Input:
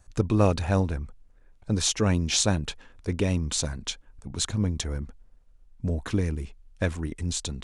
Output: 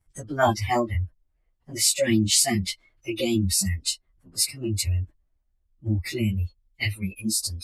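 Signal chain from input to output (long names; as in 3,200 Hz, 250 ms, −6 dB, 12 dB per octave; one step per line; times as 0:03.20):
phase-vocoder pitch shift without resampling +4 semitones
noise reduction from a noise print of the clip's start 24 dB
in parallel at +2 dB: downward compressor, threshold −39 dBFS, peak gain reduction 14.5 dB
on the sum: level +6.5 dB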